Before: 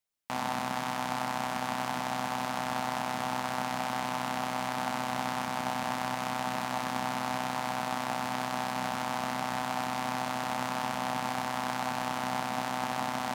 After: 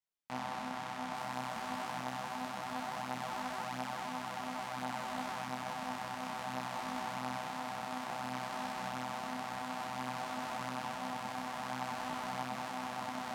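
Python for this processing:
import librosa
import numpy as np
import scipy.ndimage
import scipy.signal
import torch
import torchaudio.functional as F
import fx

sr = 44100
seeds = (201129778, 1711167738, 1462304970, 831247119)

y = fx.high_shelf(x, sr, hz=8300.0, db=fx.steps((0.0, -9.5), (1.13, -3.5)))
y = fx.detune_double(y, sr, cents=20)
y = y * 10.0 ** (-3.5 / 20.0)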